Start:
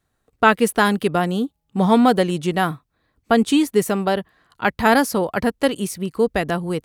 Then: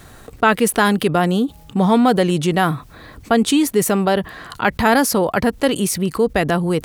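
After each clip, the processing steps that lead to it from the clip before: level flattener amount 50%; trim -1 dB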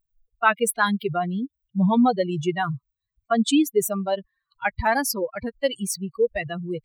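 expander on every frequency bin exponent 3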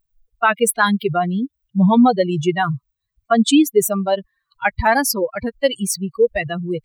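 loudness maximiser +8.5 dB; trim -2.5 dB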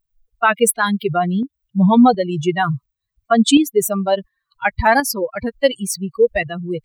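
tremolo saw up 1.4 Hz, depth 50%; trim +2.5 dB

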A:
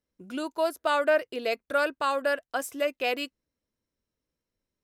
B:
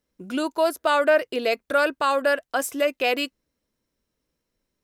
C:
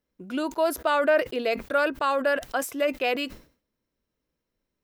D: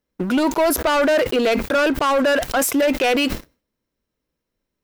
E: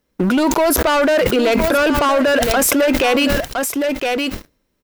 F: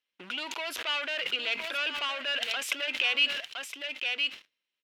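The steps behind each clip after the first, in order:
peaking EQ 94 Hz -6.5 dB 0.37 oct; in parallel at -2 dB: peak limiter -24.5 dBFS, peak gain reduction 11 dB; on the sum: trim +2.5 dB
peaking EQ 8.5 kHz -6.5 dB 1.7 oct; decay stretcher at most 140 dB/s; trim -2.5 dB
waveshaping leveller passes 3; peak limiter -21 dBFS, peak gain reduction 9 dB; trim +8 dB
delay 1014 ms -11.5 dB; in parallel at +1 dB: compressor with a negative ratio -25 dBFS, ratio -1
band-pass filter 2.9 kHz, Q 3.1; trim -2.5 dB

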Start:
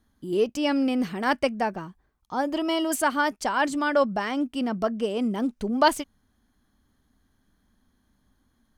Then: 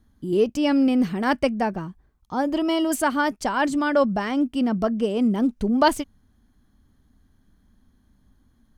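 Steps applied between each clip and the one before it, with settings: bass shelf 290 Hz +9.5 dB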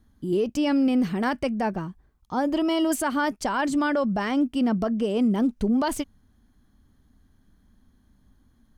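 peak limiter -16 dBFS, peak gain reduction 10.5 dB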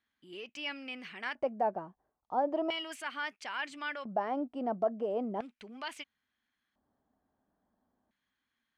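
LFO band-pass square 0.37 Hz 690–2400 Hz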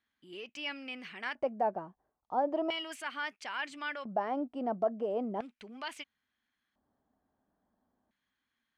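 no audible change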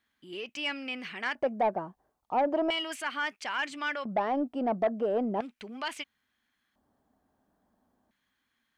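saturation -25.5 dBFS, distortion -16 dB; trim +6 dB

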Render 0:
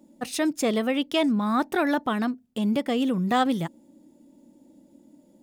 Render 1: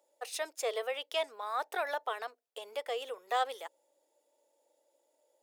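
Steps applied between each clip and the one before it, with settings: Chebyshev high-pass 440 Hz, order 5; trim -7 dB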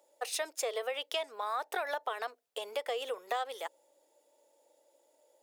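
compression 12:1, threshold -36 dBFS, peak gain reduction 11 dB; trim +5.5 dB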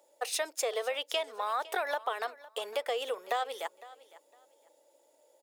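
feedback delay 508 ms, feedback 21%, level -19 dB; trim +2.5 dB

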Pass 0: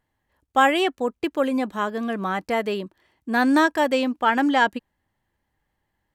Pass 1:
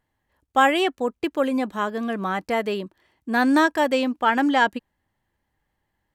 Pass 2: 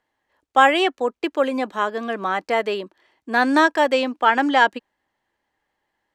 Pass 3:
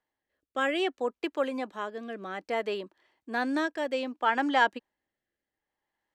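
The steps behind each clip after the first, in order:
no audible change
three-band isolator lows -16 dB, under 280 Hz, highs -12 dB, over 7.9 kHz; trim +3.5 dB
rotary cabinet horn 0.6 Hz; trim -7.5 dB

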